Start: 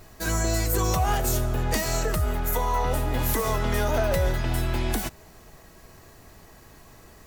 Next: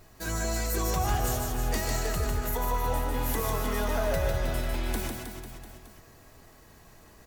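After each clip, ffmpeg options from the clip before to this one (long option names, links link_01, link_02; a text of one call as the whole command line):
ffmpeg -i in.wav -af "aecho=1:1:150|315|496.5|696.2|915.8:0.631|0.398|0.251|0.158|0.1,volume=-6dB" out.wav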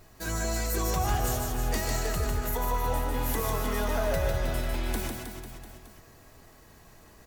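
ffmpeg -i in.wav -af anull out.wav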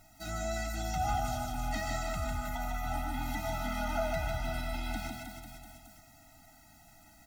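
ffmpeg -i in.wav -filter_complex "[0:a]acrossover=split=5400[link_01][link_02];[link_02]acompressor=threshold=-51dB:ratio=4:attack=1:release=60[link_03];[link_01][link_03]amix=inputs=2:normalize=0,bass=frequency=250:gain=-7,treble=frequency=4000:gain=2,afftfilt=real='re*eq(mod(floor(b*sr/1024/310),2),0)':imag='im*eq(mod(floor(b*sr/1024/310),2),0)':win_size=1024:overlap=0.75" out.wav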